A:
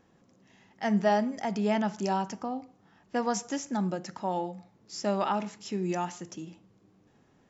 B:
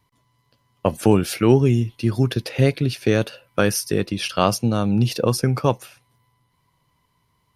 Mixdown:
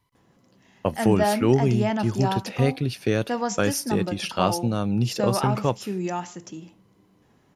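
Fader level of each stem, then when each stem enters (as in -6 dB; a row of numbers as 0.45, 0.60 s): +2.5, -4.5 dB; 0.15, 0.00 s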